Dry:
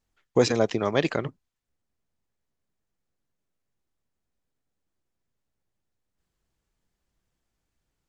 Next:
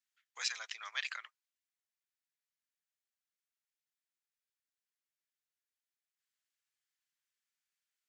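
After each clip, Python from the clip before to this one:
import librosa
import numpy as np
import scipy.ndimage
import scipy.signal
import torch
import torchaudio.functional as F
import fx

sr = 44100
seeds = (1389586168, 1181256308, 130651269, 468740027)

y = scipy.signal.sosfilt(scipy.signal.butter(4, 1500.0, 'highpass', fs=sr, output='sos'), x)
y = y * librosa.db_to_amplitude(-5.5)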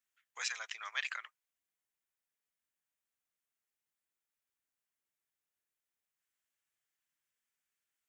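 y = fx.peak_eq(x, sr, hz=4500.0, db=-7.5, octaves=0.77)
y = y * librosa.db_to_amplitude(2.5)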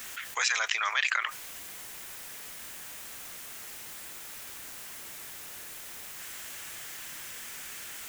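y = fx.env_flatten(x, sr, amount_pct=70)
y = y * librosa.db_to_amplitude(7.5)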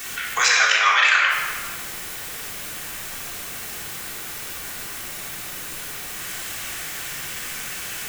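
y = fx.room_shoebox(x, sr, seeds[0], volume_m3=1900.0, walls='mixed', distance_m=3.5)
y = y * librosa.db_to_amplitude(6.0)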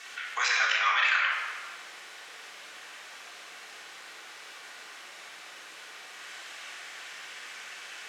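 y = fx.bandpass_edges(x, sr, low_hz=520.0, high_hz=4800.0)
y = y * librosa.db_to_amplitude(-8.0)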